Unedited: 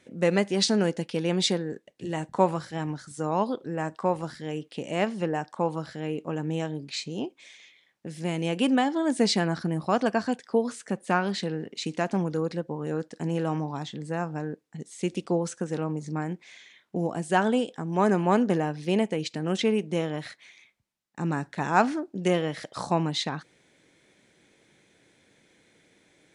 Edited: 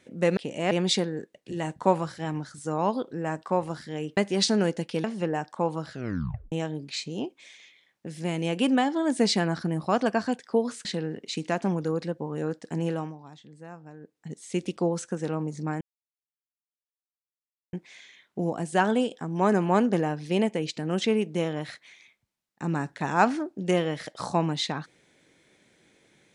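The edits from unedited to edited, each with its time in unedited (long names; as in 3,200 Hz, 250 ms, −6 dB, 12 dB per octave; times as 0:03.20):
0:00.37–0:01.24: swap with 0:04.70–0:05.04
0:05.90: tape stop 0.62 s
0:10.85–0:11.34: remove
0:13.37–0:14.76: duck −13.5 dB, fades 0.27 s
0:16.30: splice in silence 1.92 s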